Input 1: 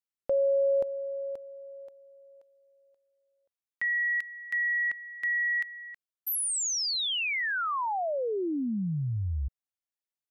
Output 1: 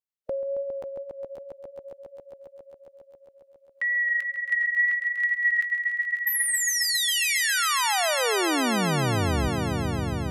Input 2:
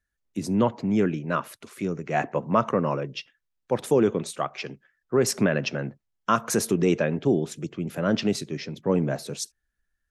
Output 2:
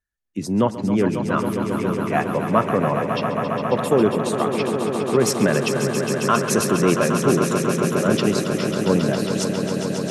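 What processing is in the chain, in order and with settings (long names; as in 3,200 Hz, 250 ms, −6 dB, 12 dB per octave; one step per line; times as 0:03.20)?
noise reduction from a noise print of the clip's start 8 dB
pitch vibrato 2.1 Hz 14 cents
echo that builds up and dies away 136 ms, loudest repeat 5, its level −9 dB
level +3 dB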